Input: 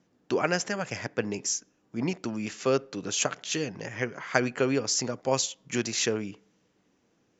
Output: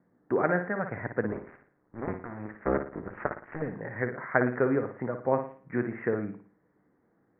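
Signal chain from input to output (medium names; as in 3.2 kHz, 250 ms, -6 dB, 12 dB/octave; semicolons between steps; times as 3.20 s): 1.28–3.62 s: cycle switcher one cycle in 2, muted; steep low-pass 2 kHz 72 dB/octave; flutter echo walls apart 9.7 m, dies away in 0.42 s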